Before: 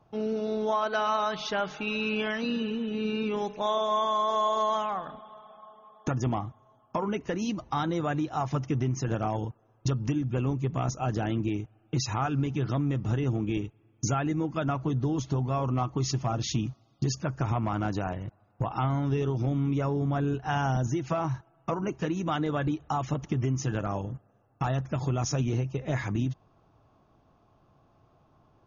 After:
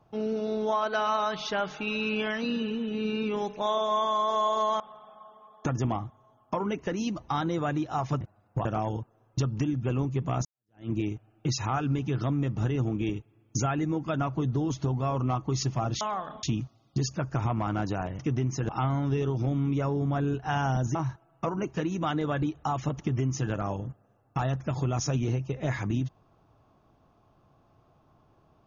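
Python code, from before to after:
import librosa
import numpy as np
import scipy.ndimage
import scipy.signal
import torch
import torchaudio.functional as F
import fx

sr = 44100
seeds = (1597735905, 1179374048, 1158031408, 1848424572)

y = fx.edit(x, sr, fx.move(start_s=4.8, length_s=0.42, to_s=16.49),
    fx.swap(start_s=8.63, length_s=0.5, other_s=18.25, other_length_s=0.44),
    fx.fade_in_span(start_s=10.93, length_s=0.45, curve='exp'),
    fx.cut(start_s=20.95, length_s=0.25), tone=tone)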